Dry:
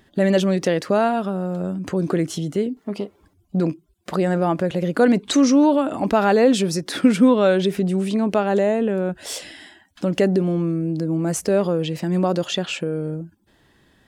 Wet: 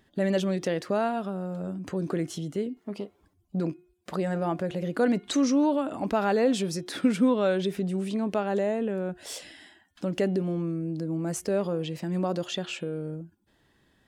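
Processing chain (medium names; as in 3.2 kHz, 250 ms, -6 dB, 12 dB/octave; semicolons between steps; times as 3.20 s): de-hum 358.2 Hz, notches 11; trim -8 dB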